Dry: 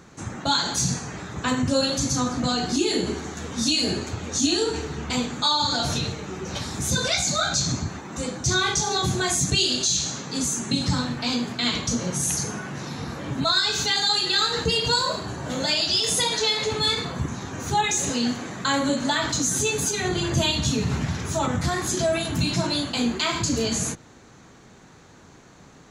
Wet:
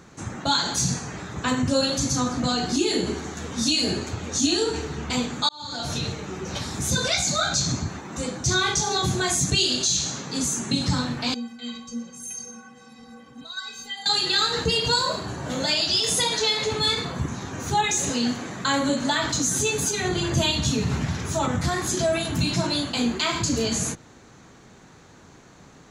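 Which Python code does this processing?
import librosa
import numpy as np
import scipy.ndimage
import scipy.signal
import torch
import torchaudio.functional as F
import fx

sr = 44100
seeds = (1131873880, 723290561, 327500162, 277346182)

y = fx.stiff_resonator(x, sr, f0_hz=230.0, decay_s=0.32, stiffness=0.03, at=(11.34, 14.06))
y = fx.edit(y, sr, fx.fade_in_span(start_s=5.49, length_s=0.62), tone=tone)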